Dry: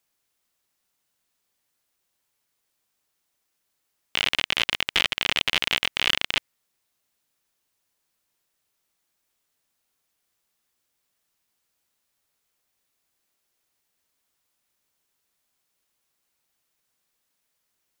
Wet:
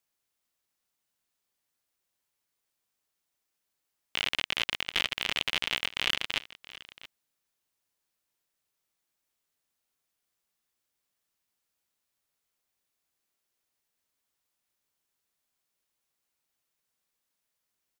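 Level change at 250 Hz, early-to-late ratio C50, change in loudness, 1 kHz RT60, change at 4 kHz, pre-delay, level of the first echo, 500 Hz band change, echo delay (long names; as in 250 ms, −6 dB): −6.5 dB, no reverb audible, −6.5 dB, no reverb audible, −6.5 dB, no reverb audible, −18.0 dB, −6.5 dB, 675 ms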